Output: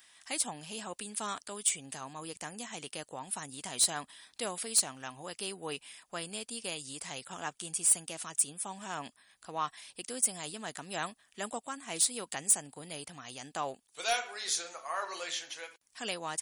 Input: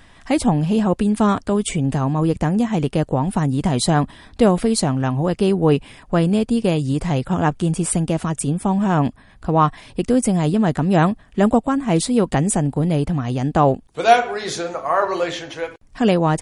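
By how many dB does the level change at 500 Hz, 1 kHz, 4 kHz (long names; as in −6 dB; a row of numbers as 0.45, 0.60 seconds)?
−22.5, −18.5, −6.5 decibels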